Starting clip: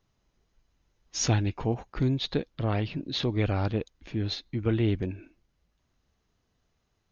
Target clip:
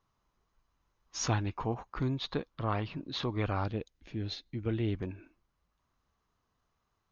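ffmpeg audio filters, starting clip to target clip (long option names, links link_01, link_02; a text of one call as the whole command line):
ffmpeg -i in.wav -af "asetnsamples=nb_out_samples=441:pad=0,asendcmd='3.64 equalizer g -2;4.94 equalizer g 11.5',equalizer=frequency=1100:width_type=o:width=0.79:gain=12,volume=-6.5dB" out.wav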